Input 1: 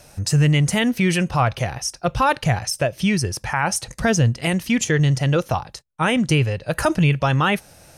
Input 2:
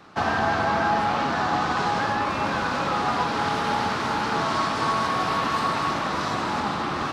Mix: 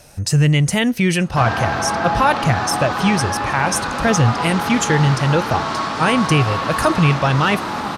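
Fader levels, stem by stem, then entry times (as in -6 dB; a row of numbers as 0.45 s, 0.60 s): +2.0 dB, +2.0 dB; 0.00 s, 1.20 s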